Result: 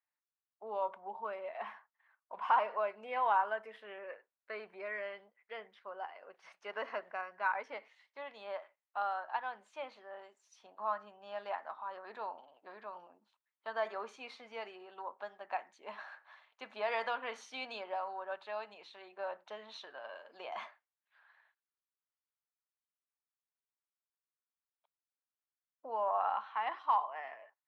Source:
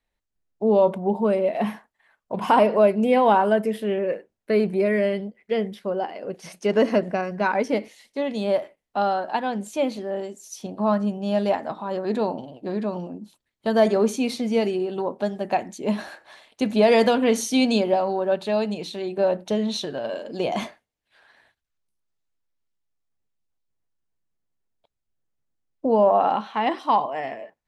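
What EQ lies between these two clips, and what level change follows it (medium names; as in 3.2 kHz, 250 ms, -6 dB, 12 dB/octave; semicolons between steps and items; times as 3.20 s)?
ladder band-pass 1.4 kHz, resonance 35%; +1.0 dB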